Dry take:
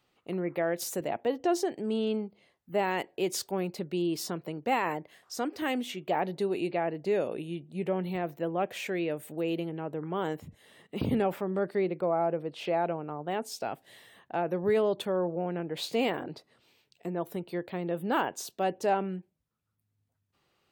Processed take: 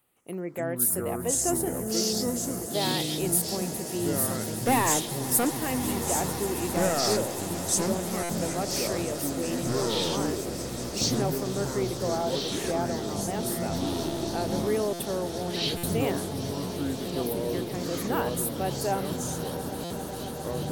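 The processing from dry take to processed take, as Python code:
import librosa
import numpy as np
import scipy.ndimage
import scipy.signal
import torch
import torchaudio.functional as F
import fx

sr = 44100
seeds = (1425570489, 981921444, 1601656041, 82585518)

y = fx.leveller(x, sr, passes=3, at=(4.65, 5.51))
y = fx.high_shelf_res(y, sr, hz=7700.0, db=13.5, q=3.0)
y = fx.echo_swell(y, sr, ms=135, loudest=8, wet_db=-17)
y = fx.echo_pitch(y, sr, ms=166, semitones=-6, count=3, db_per_echo=-3.0)
y = fx.buffer_glitch(y, sr, at_s=(8.23, 14.93, 15.77, 19.84), block=256, repeats=10)
y = y * librosa.db_to_amplitude(-2.0)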